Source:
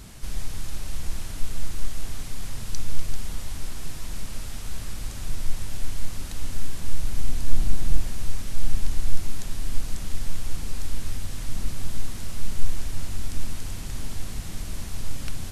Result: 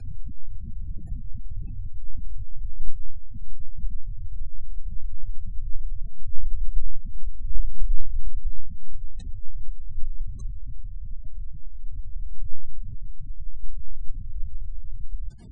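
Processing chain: reverse the whole clip; spectral gate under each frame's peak -20 dB strong; trim +1 dB

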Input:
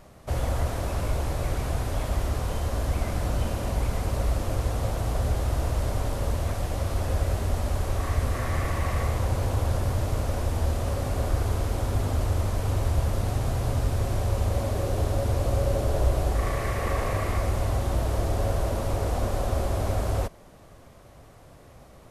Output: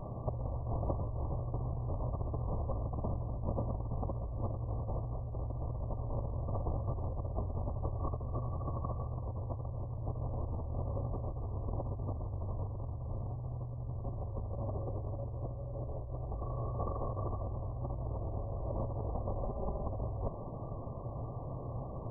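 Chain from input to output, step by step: vibrato 1.8 Hz 16 cents; brick-wall FIR low-pass 1.2 kHz; peaking EQ 120 Hz +10 dB 0.35 oct; compressor with a negative ratio -34 dBFS, ratio -1; 19.44–19.85 s: comb 5 ms, depth 69%; trim -3 dB

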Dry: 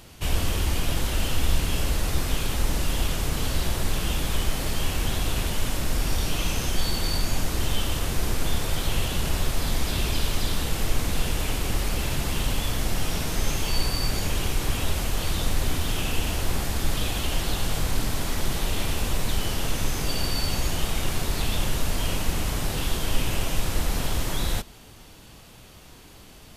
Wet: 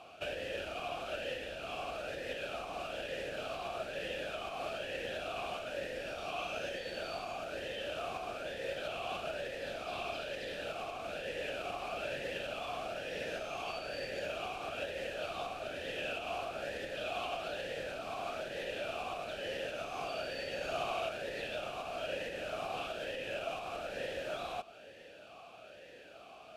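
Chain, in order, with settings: compression 2.5:1, threshold -28 dBFS, peak gain reduction 9.5 dB; 20.54–21.09 s: flutter echo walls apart 11.1 m, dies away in 1.4 s; talking filter a-e 1.1 Hz; trim +10 dB

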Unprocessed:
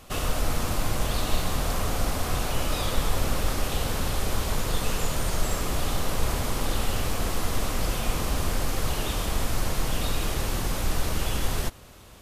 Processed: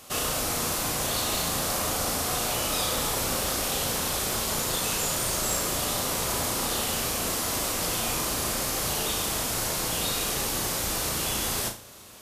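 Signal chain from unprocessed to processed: high-pass 190 Hz 6 dB/octave; tone controls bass -1 dB, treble +7 dB; on a send: flutter echo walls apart 6.1 m, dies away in 0.33 s

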